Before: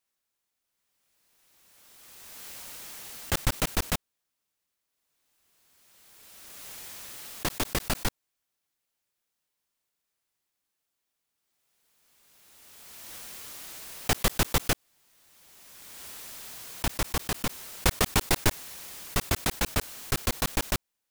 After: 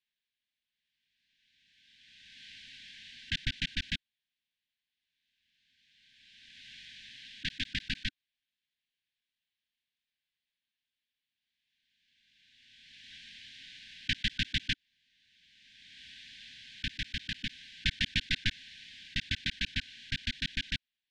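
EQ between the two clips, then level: brick-wall FIR band-stop 290–1500 Hz; ladder low-pass 4100 Hz, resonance 45%; low shelf 380 Hz -4.5 dB; +5.0 dB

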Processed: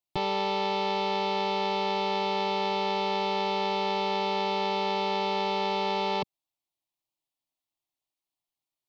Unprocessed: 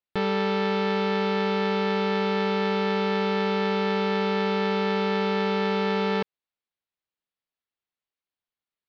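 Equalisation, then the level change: fixed phaser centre 310 Hz, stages 8; +3.5 dB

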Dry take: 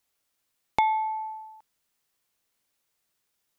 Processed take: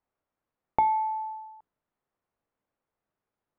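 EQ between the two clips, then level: LPF 1100 Hz 12 dB/oct; notches 60/120/180/240/300/360/420 Hz; +1.5 dB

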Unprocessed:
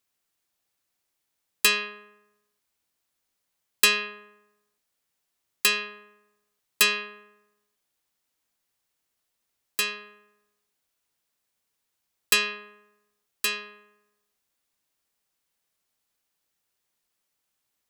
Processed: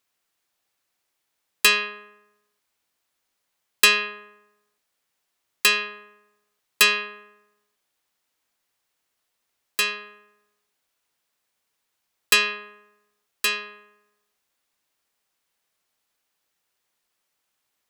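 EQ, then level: low shelf 340 Hz -7 dB; high shelf 4400 Hz -5.5 dB; +6.0 dB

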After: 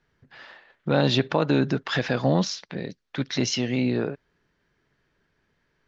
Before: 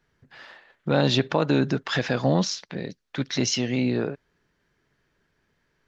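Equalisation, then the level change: LPF 6100 Hz 12 dB/oct; 0.0 dB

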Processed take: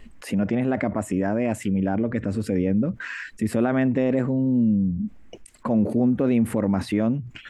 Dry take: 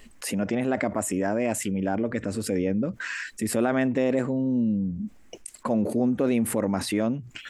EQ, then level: tone controls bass +7 dB, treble -10 dB; 0.0 dB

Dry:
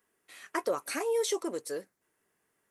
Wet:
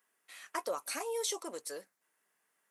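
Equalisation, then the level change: HPF 290 Hz 12 dB/oct; bell 370 Hz -9.5 dB 1.1 oct; dynamic EQ 1800 Hz, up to -6 dB, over -51 dBFS, Q 1.3; 0.0 dB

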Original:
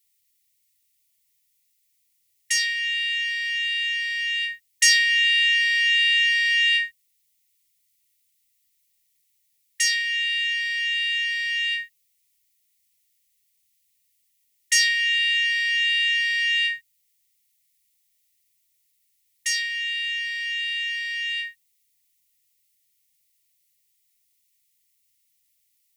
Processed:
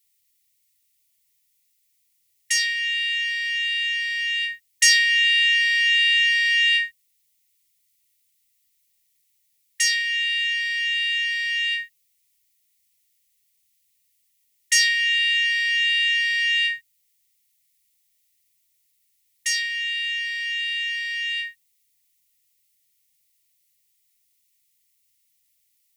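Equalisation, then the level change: notch 630 Hz, Q 12; +1.0 dB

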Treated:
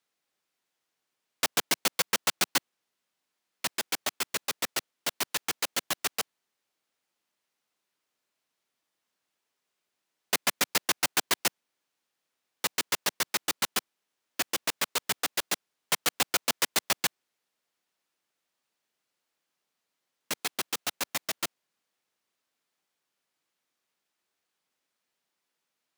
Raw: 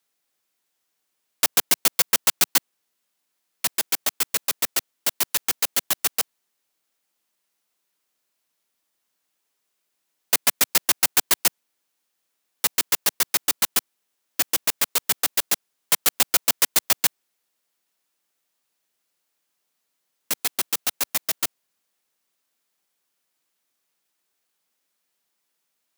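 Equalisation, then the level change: high shelf 7700 Hz -11.5 dB; -2.0 dB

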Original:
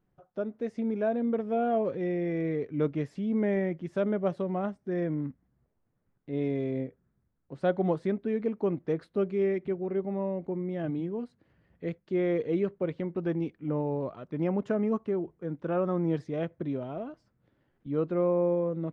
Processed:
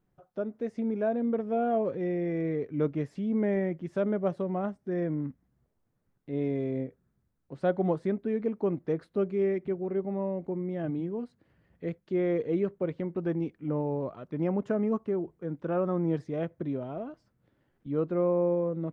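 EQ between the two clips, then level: dynamic EQ 3500 Hz, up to -4 dB, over -52 dBFS, Q 0.8; 0.0 dB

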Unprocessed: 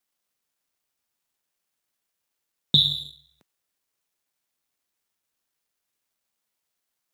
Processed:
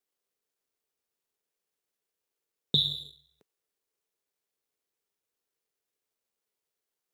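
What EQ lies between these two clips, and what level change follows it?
bell 430 Hz +12.5 dB 0.54 oct; -7.0 dB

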